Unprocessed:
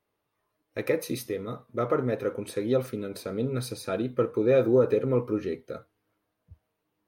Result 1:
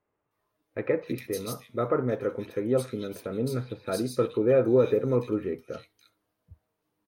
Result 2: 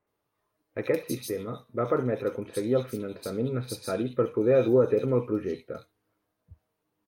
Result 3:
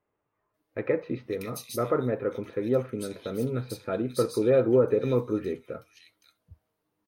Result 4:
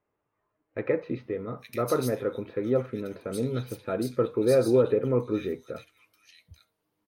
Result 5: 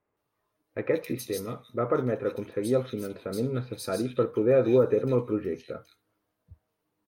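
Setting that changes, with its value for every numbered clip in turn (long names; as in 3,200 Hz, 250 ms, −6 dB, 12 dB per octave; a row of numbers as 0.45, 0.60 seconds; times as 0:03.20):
multiband delay without the direct sound, delay time: 310, 70, 540, 860, 170 milliseconds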